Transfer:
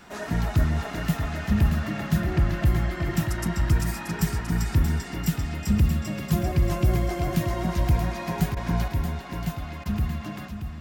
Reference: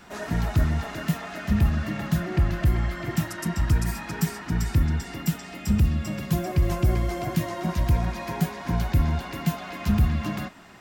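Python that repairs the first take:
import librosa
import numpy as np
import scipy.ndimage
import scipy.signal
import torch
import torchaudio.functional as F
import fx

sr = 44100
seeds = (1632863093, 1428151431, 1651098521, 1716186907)

y = fx.fix_interpolate(x, sr, at_s=(8.55, 9.84), length_ms=15.0)
y = fx.fix_echo_inverse(y, sr, delay_ms=630, level_db=-8.0)
y = fx.fix_level(y, sr, at_s=8.88, step_db=5.5)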